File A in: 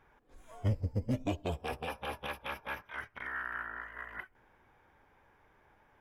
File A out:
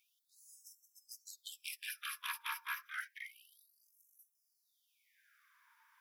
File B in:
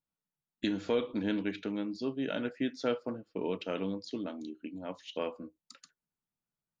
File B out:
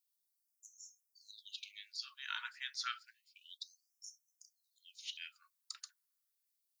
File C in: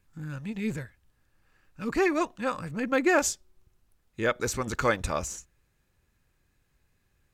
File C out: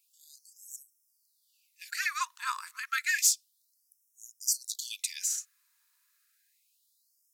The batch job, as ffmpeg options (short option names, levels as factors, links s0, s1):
-af "aexciter=amount=1.6:drive=8.4:freq=4000,afftfilt=real='re*gte(b*sr/1024,870*pow(5400/870,0.5+0.5*sin(2*PI*0.3*pts/sr)))':imag='im*gte(b*sr/1024,870*pow(5400/870,0.5+0.5*sin(2*PI*0.3*pts/sr)))':win_size=1024:overlap=0.75"